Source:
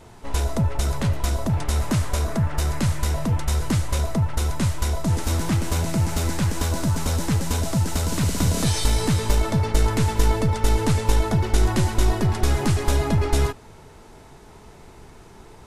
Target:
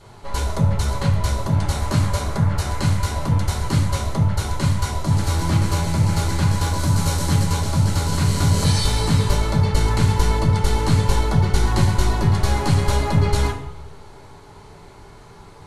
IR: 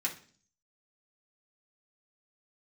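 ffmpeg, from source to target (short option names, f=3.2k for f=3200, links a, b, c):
-filter_complex "[0:a]asettb=1/sr,asplit=3[a][b][c];[a]atrim=end=6.794[d];[b]atrim=start=6.79:end=7.44,asetpts=PTS-STARTPTS,afade=t=in:d=0.004:c=qsin,afade=t=out:st=0.646:d=0.004:c=qsin,highshelf=f=5.8k:g=6[e];[c]atrim=start=7.436[f];[d][e]acrossfade=d=0.004:c1=hsin:c2=qsin[g];[g][f]acrossfade=d=0.004:c1=qsin:c2=hsin[h];[1:a]atrim=start_sample=2205,asetrate=24255,aresample=44100[i];[h][i]afir=irnorm=-1:irlink=0,volume=-5.5dB"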